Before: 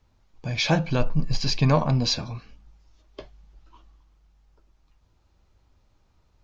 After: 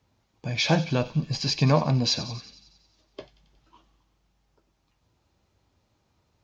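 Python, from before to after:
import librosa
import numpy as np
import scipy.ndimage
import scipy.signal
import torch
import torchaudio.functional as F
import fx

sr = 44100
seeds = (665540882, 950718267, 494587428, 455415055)

y = scipy.signal.sosfilt(scipy.signal.butter(2, 97.0, 'highpass', fs=sr, output='sos'), x)
y = fx.peak_eq(y, sr, hz=1300.0, db=-2.5, octaves=0.77)
y = fx.echo_wet_highpass(y, sr, ms=91, feedback_pct=62, hz=2800.0, wet_db=-12.0)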